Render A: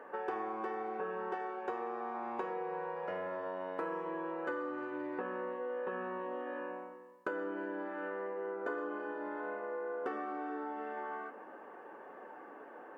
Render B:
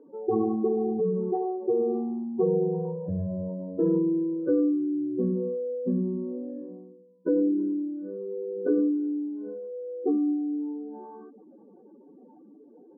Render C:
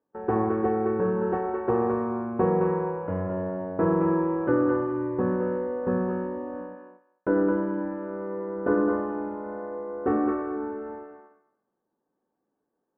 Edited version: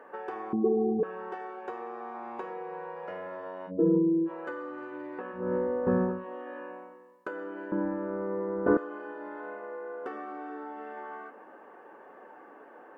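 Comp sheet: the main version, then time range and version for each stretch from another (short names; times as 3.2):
A
0.53–1.03 from B
3.69–4.28 from B, crossfade 0.06 s
5.43–6.16 from C, crossfade 0.24 s
7.72–8.77 from C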